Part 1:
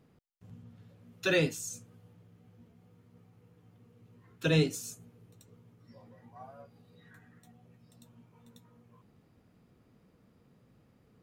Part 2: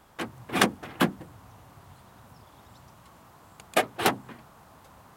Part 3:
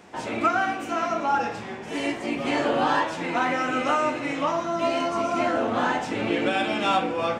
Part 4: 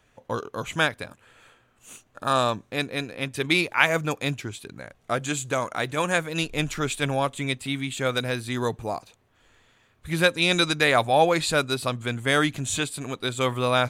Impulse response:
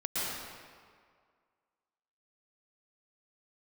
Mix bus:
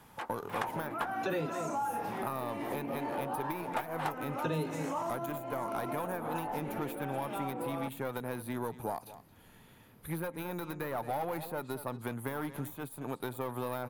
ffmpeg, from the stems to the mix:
-filter_complex "[0:a]volume=2.5dB,asplit=2[link_01][link_02];[link_02]volume=-12.5dB[link_03];[1:a]highpass=790,volume=-2.5dB[link_04];[2:a]alimiter=limit=-24dB:level=0:latency=1,adelay=500,volume=-1.5dB[link_05];[3:a]lowpass=frequency=12000:width=0.5412,lowpass=frequency=12000:width=1.3066,aeval=exprs='(tanh(11.2*val(0)+0.55)-tanh(0.55))/11.2':channel_layout=same,volume=0dB,asplit=2[link_06][link_07];[link_07]volume=-21dB[link_08];[link_05][link_06]amix=inputs=2:normalize=0,aexciter=amount=14.4:drive=9.2:freq=11000,acompressor=threshold=-29dB:ratio=3,volume=0dB[link_09];[link_03][link_08]amix=inputs=2:normalize=0,aecho=0:1:221:1[link_10];[link_01][link_04][link_09][link_10]amix=inputs=4:normalize=0,equalizer=frequency=880:width_type=o:width=0.24:gain=8,acrossover=split=130|1600[link_11][link_12][link_13];[link_11]acompressor=threshold=-57dB:ratio=4[link_14];[link_12]acompressor=threshold=-32dB:ratio=4[link_15];[link_13]acompressor=threshold=-51dB:ratio=4[link_16];[link_14][link_15][link_16]amix=inputs=3:normalize=0"

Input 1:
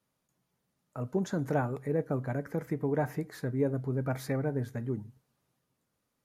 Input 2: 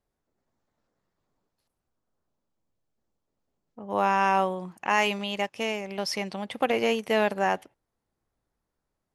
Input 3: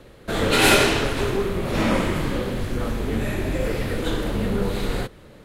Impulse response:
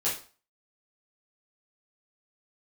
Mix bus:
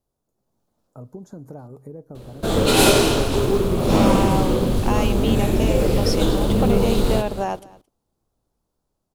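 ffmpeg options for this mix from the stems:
-filter_complex "[0:a]equalizer=frequency=3000:width_type=o:width=1.4:gain=-11.5,acompressor=threshold=-36dB:ratio=6,volume=-3.5dB[link_01];[1:a]acompressor=threshold=-29dB:ratio=2,volume=2dB,asplit=2[link_02][link_03];[link_03]volume=-22.5dB[link_04];[2:a]acrusher=bits=8:mode=log:mix=0:aa=0.000001,adelay=2150,volume=1.5dB,asplit=2[link_05][link_06];[link_06]volume=-12.5dB[link_07];[link_04][link_07]amix=inputs=2:normalize=0,aecho=0:1:222:1[link_08];[link_01][link_02][link_05][link_08]amix=inputs=4:normalize=0,equalizer=frequency=1900:width=1.5:gain=-13,dynaudnorm=framelen=210:gausssize=5:maxgain=5dB"

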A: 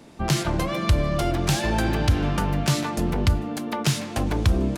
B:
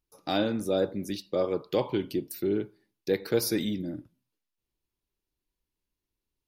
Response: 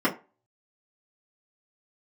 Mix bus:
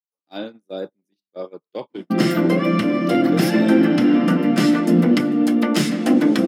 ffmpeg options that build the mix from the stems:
-filter_complex "[0:a]equalizer=frequency=1000:width_type=o:width=0.59:gain=-11,adelay=1900,volume=-2dB,asplit=2[link_01][link_02];[link_02]volume=-5dB[link_03];[1:a]volume=-2.5dB,asplit=2[link_04][link_05];[link_05]apad=whole_len=294165[link_06];[link_01][link_06]sidechaincompress=threshold=-40dB:ratio=8:attack=16:release=1460[link_07];[2:a]atrim=start_sample=2205[link_08];[link_03][link_08]afir=irnorm=-1:irlink=0[link_09];[link_07][link_04][link_09]amix=inputs=3:normalize=0,agate=range=-37dB:threshold=-28dB:ratio=16:detection=peak,highpass=frequency=160:width=0.5412,highpass=frequency=160:width=1.3066"

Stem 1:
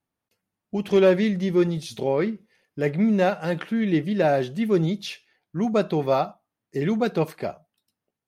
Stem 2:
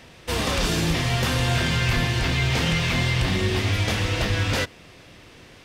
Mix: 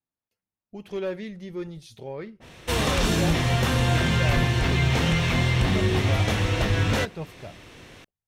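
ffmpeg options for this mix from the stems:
ffmpeg -i stem1.wav -i stem2.wav -filter_complex "[0:a]asubboost=boost=11.5:cutoff=79,acontrast=48,volume=-17dB[link_01];[1:a]bandreject=frequency=4800:width=11,adynamicequalizer=threshold=0.0112:dfrequency=1600:dqfactor=0.7:tfrequency=1600:tqfactor=0.7:attack=5:release=100:ratio=0.375:range=2:mode=cutabove:tftype=highshelf,adelay=2400,volume=1dB[link_02];[link_01][link_02]amix=inputs=2:normalize=0" out.wav

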